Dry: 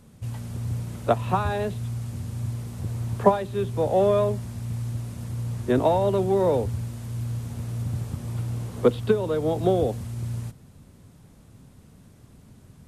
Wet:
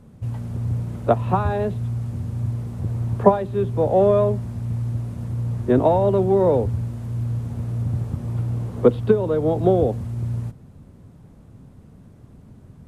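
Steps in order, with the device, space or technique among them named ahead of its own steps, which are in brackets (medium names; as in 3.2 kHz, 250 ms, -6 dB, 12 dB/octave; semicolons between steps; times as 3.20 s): through cloth (treble shelf 1.9 kHz -13.5 dB); trim +5 dB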